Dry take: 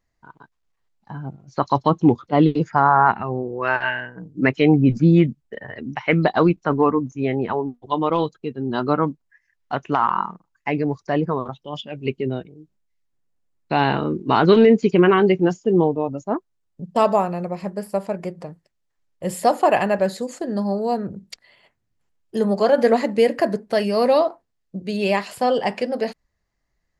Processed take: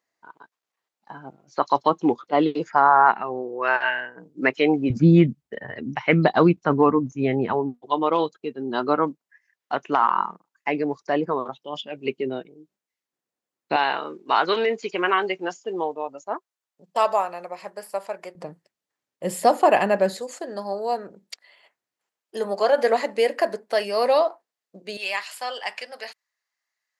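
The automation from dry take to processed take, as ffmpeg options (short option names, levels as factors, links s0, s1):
-af "asetnsamples=n=441:p=0,asendcmd='4.9 highpass f 98;7.81 highpass f 300;13.76 highpass f 720;18.35 highpass f 210;20.2 highpass f 520;24.97 highpass f 1300',highpass=380"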